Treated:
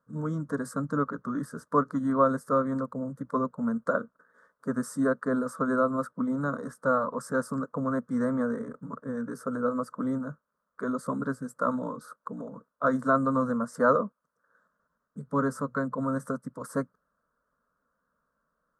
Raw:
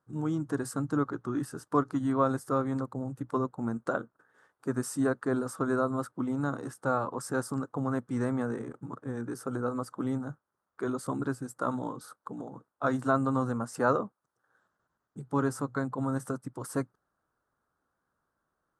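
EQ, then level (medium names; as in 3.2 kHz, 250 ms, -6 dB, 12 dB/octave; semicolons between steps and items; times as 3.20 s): peaking EQ 290 Hz -3 dB 0.4 oct; treble shelf 3.4 kHz -10 dB; static phaser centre 530 Hz, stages 8; +6.0 dB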